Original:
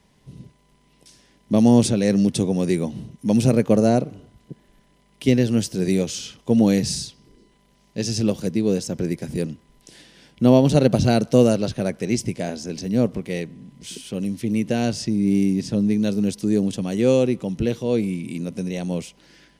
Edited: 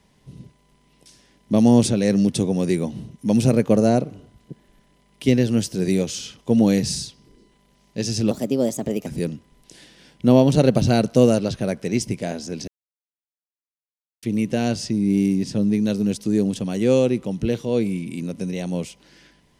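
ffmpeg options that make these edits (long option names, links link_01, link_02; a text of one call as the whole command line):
ffmpeg -i in.wav -filter_complex "[0:a]asplit=5[link_01][link_02][link_03][link_04][link_05];[link_01]atrim=end=8.314[link_06];[link_02]atrim=start=8.31:end=9.24,asetpts=PTS-STARTPTS,asetrate=54243,aresample=44100[link_07];[link_03]atrim=start=9.236:end=12.85,asetpts=PTS-STARTPTS,afade=type=out:start_time=3.61:duration=0.004:curve=hsin[link_08];[link_04]atrim=start=12.85:end=14.4,asetpts=PTS-STARTPTS,volume=0[link_09];[link_05]atrim=start=14.4,asetpts=PTS-STARTPTS,afade=type=in:duration=0.004:curve=hsin[link_10];[link_06][link_07]acrossfade=duration=0.004:curve1=hsin:curve2=hsin[link_11];[link_08][link_09][link_10]concat=n=3:v=0:a=1[link_12];[link_11][link_12]acrossfade=duration=0.004:curve1=hsin:curve2=hsin" out.wav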